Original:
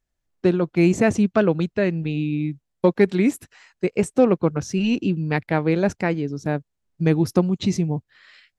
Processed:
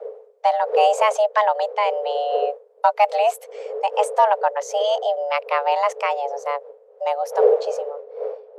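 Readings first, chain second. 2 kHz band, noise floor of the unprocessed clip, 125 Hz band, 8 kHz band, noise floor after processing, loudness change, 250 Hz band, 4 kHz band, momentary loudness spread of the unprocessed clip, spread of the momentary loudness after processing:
-0.5 dB, -78 dBFS, under -40 dB, -0.5 dB, -51 dBFS, +1.0 dB, under -35 dB, +4.5 dB, 8 LU, 11 LU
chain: ending faded out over 2.52 s; wind noise 100 Hz -28 dBFS; frequency shift +420 Hz

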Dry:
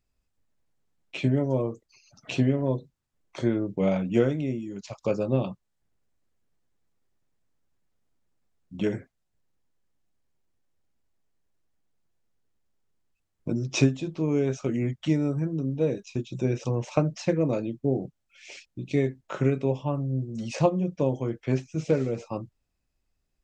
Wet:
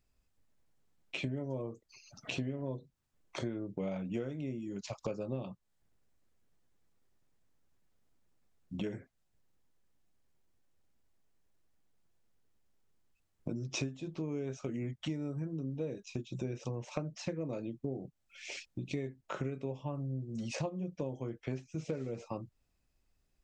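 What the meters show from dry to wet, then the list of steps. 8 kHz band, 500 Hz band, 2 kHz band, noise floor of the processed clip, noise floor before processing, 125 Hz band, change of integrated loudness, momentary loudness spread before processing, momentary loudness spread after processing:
-7.0 dB, -13.0 dB, -8.0 dB, -77 dBFS, -77 dBFS, -12.0 dB, -12.5 dB, 13 LU, 7 LU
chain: compressor 4:1, threshold -38 dBFS, peak gain reduction 19.5 dB; gain +1 dB

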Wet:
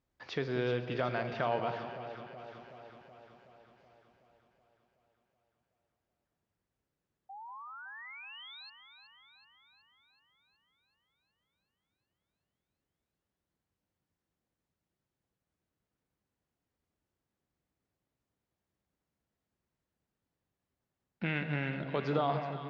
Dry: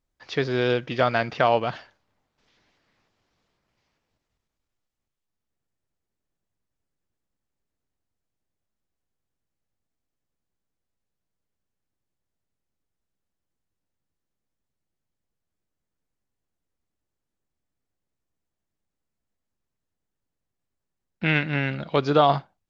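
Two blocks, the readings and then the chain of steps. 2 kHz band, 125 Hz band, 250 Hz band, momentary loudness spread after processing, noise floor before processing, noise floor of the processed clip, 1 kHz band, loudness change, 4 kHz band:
-11.0 dB, -8.5 dB, -9.5 dB, 19 LU, -83 dBFS, under -85 dBFS, -11.5 dB, -13.0 dB, -12.0 dB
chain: in parallel at +3 dB: limiter -13 dBFS, peak gain reduction 8 dB; on the sum: HPF 53 Hz; Schroeder reverb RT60 1.1 s, combs from 33 ms, DRR 11.5 dB; compressor 1.5:1, threshold -42 dBFS, peak gain reduction 12 dB; painted sound rise, 7.29–8.7, 760–4400 Hz -40 dBFS; high shelf 5200 Hz -11.5 dB; on a send: echo with dull and thin repeats by turns 0.187 s, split 980 Hz, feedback 79%, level -8.5 dB; on the sum: gain -6.5 dB

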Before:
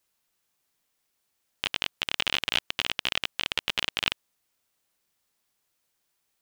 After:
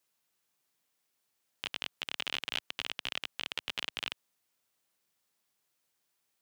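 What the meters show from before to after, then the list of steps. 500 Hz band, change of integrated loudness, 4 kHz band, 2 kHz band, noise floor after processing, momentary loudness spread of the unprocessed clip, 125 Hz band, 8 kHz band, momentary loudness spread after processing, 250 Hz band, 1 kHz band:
-9.0 dB, -9.0 dB, -9.0 dB, -9.0 dB, -82 dBFS, 4 LU, -11.0 dB, -9.0 dB, 5 LU, -9.0 dB, -9.0 dB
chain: limiter -13.5 dBFS, peak gain reduction 10.5 dB; HPF 96 Hz 12 dB/oct; gain -3 dB

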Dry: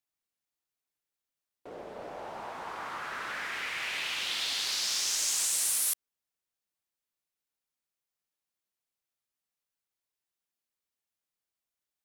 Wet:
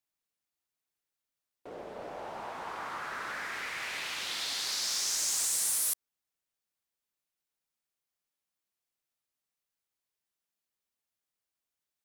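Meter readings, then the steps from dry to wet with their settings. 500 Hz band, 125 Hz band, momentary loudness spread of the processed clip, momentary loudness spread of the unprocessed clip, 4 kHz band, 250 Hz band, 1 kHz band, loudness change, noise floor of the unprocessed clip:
0.0 dB, n/a, 15 LU, 17 LU, -2.5 dB, 0.0 dB, 0.0 dB, -2.0 dB, under -85 dBFS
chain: dynamic EQ 2900 Hz, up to -6 dB, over -47 dBFS, Q 1.8; wavefolder -23.5 dBFS

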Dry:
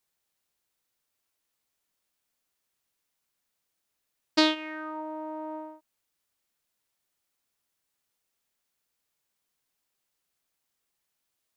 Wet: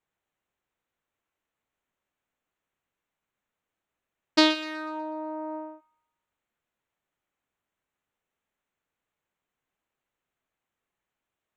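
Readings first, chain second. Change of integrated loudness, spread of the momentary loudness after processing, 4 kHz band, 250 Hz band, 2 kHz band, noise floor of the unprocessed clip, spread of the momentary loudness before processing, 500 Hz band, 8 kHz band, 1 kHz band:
+2.5 dB, 16 LU, +2.5 dB, +2.5 dB, +2.5 dB, -81 dBFS, 16 LU, +2.5 dB, +3.0 dB, +2.0 dB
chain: Wiener smoothing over 9 samples; thin delay 0.123 s, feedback 40%, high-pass 1500 Hz, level -14 dB; gain +2.5 dB

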